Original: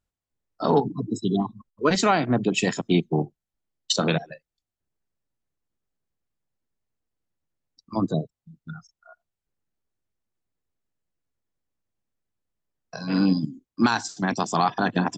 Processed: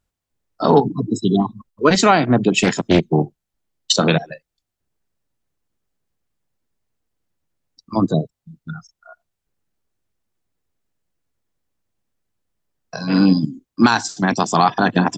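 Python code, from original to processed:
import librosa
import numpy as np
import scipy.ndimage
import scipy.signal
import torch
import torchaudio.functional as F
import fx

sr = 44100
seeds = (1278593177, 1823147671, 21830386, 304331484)

y = fx.doppler_dist(x, sr, depth_ms=0.53, at=(2.57, 3.07))
y = F.gain(torch.from_numpy(y), 7.0).numpy()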